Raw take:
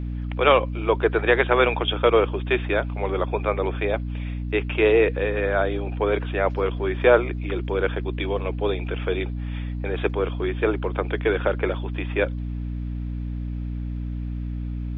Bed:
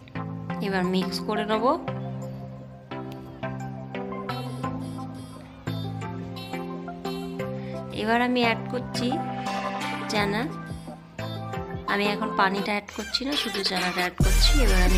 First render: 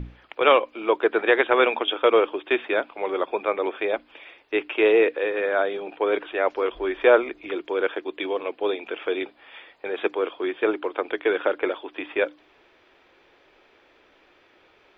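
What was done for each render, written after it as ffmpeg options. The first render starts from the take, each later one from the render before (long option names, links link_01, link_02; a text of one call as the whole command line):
ffmpeg -i in.wav -af "bandreject=frequency=60:width_type=h:width=6,bandreject=frequency=120:width_type=h:width=6,bandreject=frequency=180:width_type=h:width=6,bandreject=frequency=240:width_type=h:width=6,bandreject=frequency=300:width_type=h:width=6" out.wav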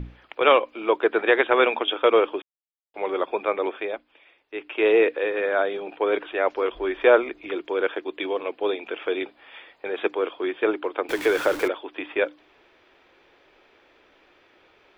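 ffmpeg -i in.wav -filter_complex "[0:a]asettb=1/sr,asplit=3[link_01][link_02][link_03];[link_01]atrim=end=11.094[link_04];[link_02]atrim=start=11.09:end=11.68,asetpts=PTS-STARTPTS,afade=type=in:duration=0.004:curve=qsin,afade=type=out:start_time=0.586:duration=0.004:curve=qsin,aeval=exprs='val(0)+0.5*0.0376*sgn(val(0))':channel_layout=same[link_05];[link_03]atrim=start=11.676[link_06];[link_04][link_05]acrossfade=duration=0.004:curve1=hsin:curve2=qsin[link_07];[link_07][link_06]acrossfade=duration=0.004:curve1=qsin:curve2=hsin,asplit=5[link_08][link_09][link_10][link_11][link_12];[link_08]atrim=end=2.42,asetpts=PTS-STARTPTS,afade=type=out:start_time=2.416:duration=0.004:curve=hsin[link_13];[link_09]atrim=start=2.42:end=2.94,asetpts=PTS-STARTPTS,volume=0[link_14];[link_10]atrim=start=2.94:end=4.05,asetpts=PTS-STARTPTS,afade=type=in:duration=0.004:curve=hsin,afade=type=out:start_time=0.71:duration=0.4:silence=0.298538[link_15];[link_11]atrim=start=4.05:end=4.54,asetpts=PTS-STARTPTS,volume=-10.5dB[link_16];[link_12]atrim=start=4.54,asetpts=PTS-STARTPTS,afade=type=in:duration=0.4:silence=0.298538[link_17];[link_13][link_14][link_15][link_16][link_17]concat=n=5:v=0:a=1" out.wav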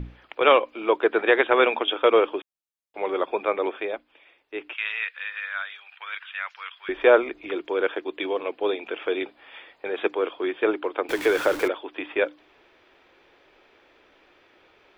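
ffmpeg -i in.wav -filter_complex "[0:a]asettb=1/sr,asplit=3[link_01][link_02][link_03];[link_01]atrim=end=4.734[link_04];[link_02]atrim=start=4.73:end=6.89,asetpts=PTS-STARTPTS,afade=type=in:duration=0.004:curve=qsin,afade=type=out:start_time=2.156:duration=0.004:curve=qsin,highpass=frequency=1400:width=0.5412,highpass=frequency=1400:width=1.3066[link_05];[link_03]atrim=start=6.886[link_06];[link_04][link_05]acrossfade=duration=0.004:curve1=hsin:curve2=qsin[link_07];[link_07][link_06]acrossfade=duration=0.004:curve1=qsin:curve2=hsin" out.wav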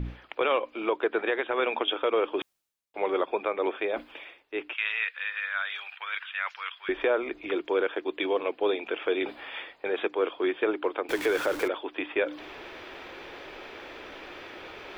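ffmpeg -i in.wav -af "alimiter=limit=-15.5dB:level=0:latency=1:release=219,areverse,acompressor=mode=upward:threshold=-29dB:ratio=2.5,areverse" out.wav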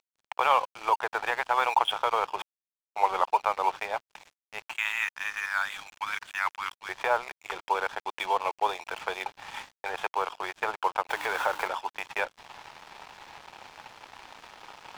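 ffmpeg -i in.wav -af "highpass=frequency=870:width_type=q:width=4.9,aeval=exprs='sgn(val(0))*max(abs(val(0))-0.0112,0)':channel_layout=same" out.wav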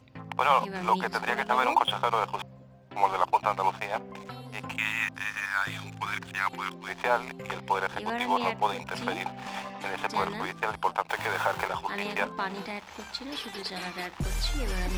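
ffmpeg -i in.wav -i bed.wav -filter_complex "[1:a]volume=-10.5dB[link_01];[0:a][link_01]amix=inputs=2:normalize=0" out.wav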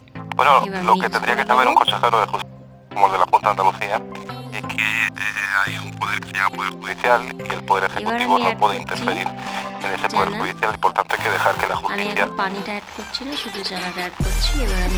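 ffmpeg -i in.wav -af "volume=10dB,alimiter=limit=-1dB:level=0:latency=1" out.wav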